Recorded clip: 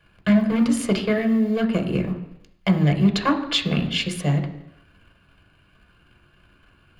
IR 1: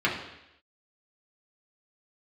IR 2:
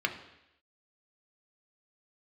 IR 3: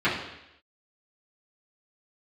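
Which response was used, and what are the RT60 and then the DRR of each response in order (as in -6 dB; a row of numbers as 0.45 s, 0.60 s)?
2; 0.85 s, 0.85 s, 0.85 s; -5.0 dB, 4.0 dB, -12.5 dB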